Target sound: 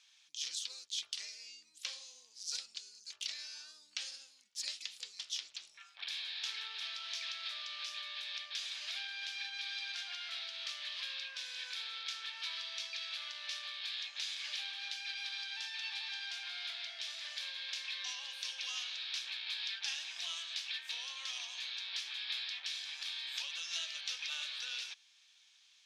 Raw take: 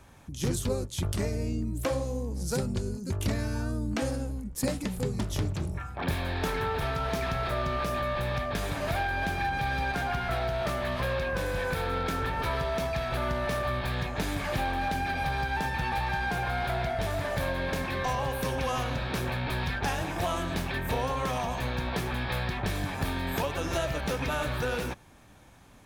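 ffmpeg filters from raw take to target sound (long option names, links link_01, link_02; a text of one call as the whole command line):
ffmpeg -i in.wav -af "asuperpass=centerf=4200:order=4:qfactor=1.4,volume=3.5dB" out.wav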